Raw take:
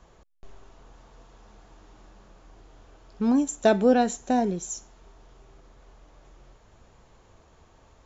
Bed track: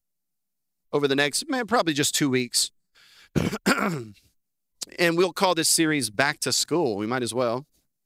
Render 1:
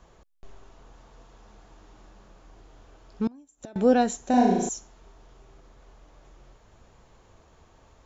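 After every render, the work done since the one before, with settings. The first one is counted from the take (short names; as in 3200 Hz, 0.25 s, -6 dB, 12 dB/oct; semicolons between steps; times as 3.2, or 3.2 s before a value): 3.27–3.76 flipped gate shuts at -24 dBFS, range -28 dB; 4.29–4.69 flutter echo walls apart 6.3 m, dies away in 0.95 s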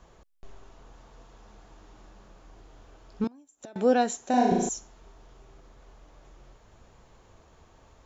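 3.24–4.52 HPF 330 Hz 6 dB/oct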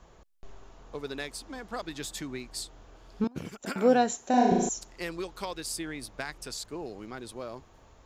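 add bed track -15 dB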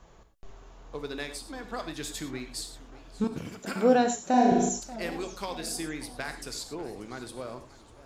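non-linear reverb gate 0.13 s flat, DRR 7 dB; warbling echo 0.591 s, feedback 50%, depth 198 cents, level -18.5 dB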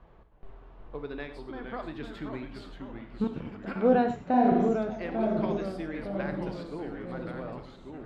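air absorption 430 m; echoes that change speed 0.317 s, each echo -2 st, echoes 3, each echo -6 dB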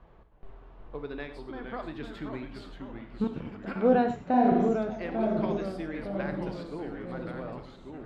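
nothing audible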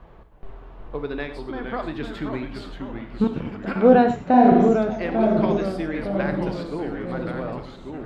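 gain +8.5 dB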